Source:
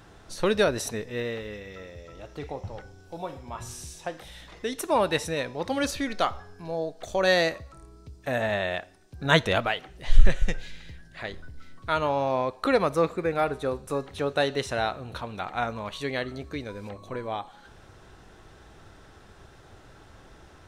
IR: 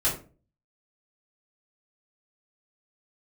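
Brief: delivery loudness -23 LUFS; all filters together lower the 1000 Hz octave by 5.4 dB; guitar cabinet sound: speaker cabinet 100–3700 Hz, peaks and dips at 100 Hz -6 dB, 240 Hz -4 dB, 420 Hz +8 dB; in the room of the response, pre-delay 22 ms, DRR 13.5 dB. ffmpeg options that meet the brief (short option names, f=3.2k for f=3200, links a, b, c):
-filter_complex "[0:a]equalizer=f=1k:t=o:g=-8,asplit=2[a][b];[1:a]atrim=start_sample=2205,adelay=22[c];[b][c]afir=irnorm=-1:irlink=0,volume=-24dB[d];[a][d]amix=inputs=2:normalize=0,highpass=100,equalizer=f=100:t=q:w=4:g=-6,equalizer=f=240:t=q:w=4:g=-4,equalizer=f=420:t=q:w=4:g=8,lowpass=f=3.7k:w=0.5412,lowpass=f=3.7k:w=1.3066,volume=5.5dB"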